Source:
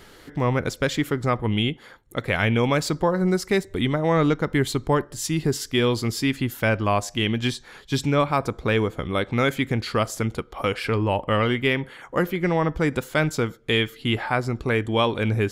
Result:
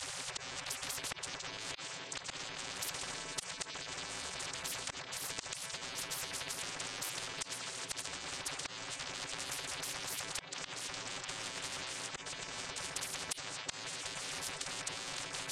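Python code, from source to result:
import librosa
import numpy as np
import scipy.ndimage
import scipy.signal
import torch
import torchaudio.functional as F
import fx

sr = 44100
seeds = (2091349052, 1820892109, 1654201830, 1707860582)

y = fx.chord_vocoder(x, sr, chord='bare fifth', root=57)
y = fx.hum_notches(y, sr, base_hz=60, count=3)
y = fx.spec_gate(y, sr, threshold_db=-30, keep='weak')
y = fx.echo_stepped(y, sr, ms=166, hz=2900.0, octaves=-1.4, feedback_pct=70, wet_db=-7)
y = fx.over_compress(y, sr, threshold_db=-53.0, ratio=-1.0)
y = fx.high_shelf(y, sr, hz=4700.0, db=8.0)
y = fx.auto_swell(y, sr, attack_ms=696.0)
y = fx.spectral_comp(y, sr, ratio=10.0)
y = y * librosa.db_to_amplitude(17.0)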